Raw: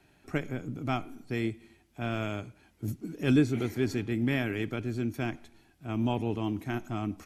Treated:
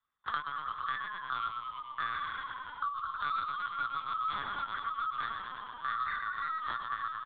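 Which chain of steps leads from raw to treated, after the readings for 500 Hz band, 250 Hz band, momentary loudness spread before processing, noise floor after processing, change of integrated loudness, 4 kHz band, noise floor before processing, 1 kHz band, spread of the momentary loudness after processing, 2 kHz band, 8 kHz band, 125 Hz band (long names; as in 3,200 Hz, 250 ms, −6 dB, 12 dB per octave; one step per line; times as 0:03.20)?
−24.0 dB, −31.0 dB, 11 LU, −47 dBFS, −4.0 dB, 0.0 dB, −65 dBFS, +8.5 dB, 5 LU, +1.5 dB, below −30 dB, −27.5 dB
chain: neighbouring bands swapped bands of 1,000 Hz
high-pass filter 690 Hz 24 dB per octave
noise gate −53 dBFS, range −43 dB
reverb reduction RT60 1.5 s
leveller curve on the samples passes 1
flanger 1.3 Hz, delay 8.5 ms, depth 5.3 ms, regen +9%
soft clipping −18 dBFS, distortion −22 dB
double-tracking delay 19 ms −12.5 dB
on a send: echo with shifted repeats 110 ms, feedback 55%, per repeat −44 Hz, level −5.5 dB
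on the sum: hard clipping −19 dBFS, distortion −34 dB
linear-prediction vocoder at 8 kHz pitch kept
multiband upward and downward compressor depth 100%
level −4.5 dB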